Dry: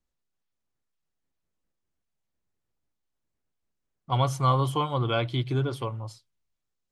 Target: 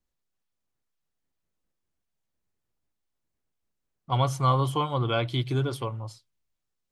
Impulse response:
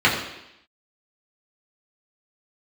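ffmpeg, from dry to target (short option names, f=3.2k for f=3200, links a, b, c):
-filter_complex "[0:a]asettb=1/sr,asplit=3[a][b][c];[a]atrim=end=5.284[d];[b]atrim=start=5.28:end=5.77,asetpts=PTS-STARTPTS,afade=t=in:d=0.004:c=qsin,afade=t=out:st=0.486:d=0.004:c=qsin,highshelf=f=5.1k:g=8[e];[c]atrim=start=5.766[f];[d][e]acrossfade=d=0.004:c1=hsin:c2=qsin[g];[g][f]acrossfade=d=0.004:c1=qsin:c2=hsin"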